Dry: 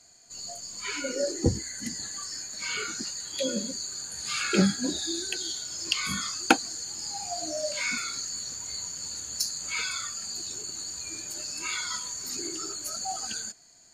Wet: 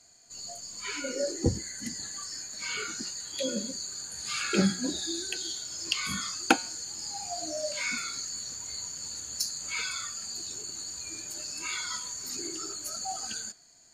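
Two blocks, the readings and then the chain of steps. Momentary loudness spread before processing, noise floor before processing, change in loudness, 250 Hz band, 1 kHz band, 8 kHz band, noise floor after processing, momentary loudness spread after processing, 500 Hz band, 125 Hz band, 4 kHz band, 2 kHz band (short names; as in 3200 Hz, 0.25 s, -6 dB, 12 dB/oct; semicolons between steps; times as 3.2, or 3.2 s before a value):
9 LU, -55 dBFS, -2.0 dB, -2.0 dB, -2.0 dB, -2.0 dB, -56 dBFS, 9 LU, -2.0 dB, -2.5 dB, -2.0 dB, -2.0 dB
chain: de-hum 182.1 Hz, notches 27; gain -2 dB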